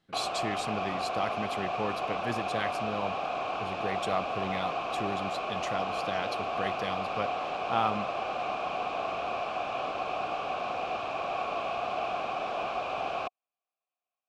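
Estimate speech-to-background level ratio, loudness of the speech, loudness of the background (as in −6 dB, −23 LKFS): −3.0 dB, −36.0 LKFS, −33.0 LKFS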